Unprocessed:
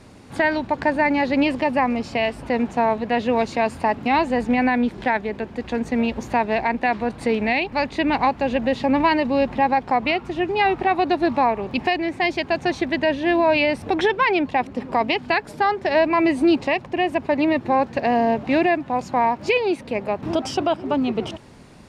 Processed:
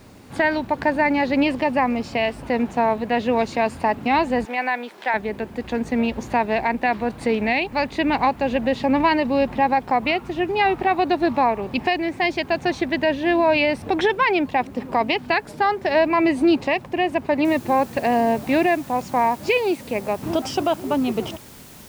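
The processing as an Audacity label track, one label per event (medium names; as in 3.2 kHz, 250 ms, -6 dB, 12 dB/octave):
4.450000	5.140000	high-pass 620 Hz
17.450000	17.450000	noise floor step -63 dB -46 dB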